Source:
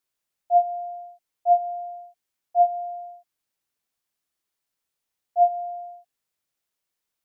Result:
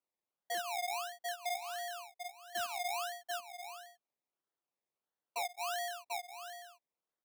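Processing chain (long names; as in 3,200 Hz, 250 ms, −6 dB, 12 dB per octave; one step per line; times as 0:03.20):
adaptive Wiener filter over 25 samples
downward compressor 5 to 1, threshold −30 dBFS, peak gain reduction 15 dB
sample-and-hold swept by an LFO 24×, swing 60% 1.5 Hz
on a send: single-tap delay 740 ms −11 dB
on the sum: gain into a clipping stage and back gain 30 dB
brickwall limiter −35.5 dBFS, peak gain reduction 40 dB
high-pass filter 720 Hz 6 dB per octave
level +3.5 dB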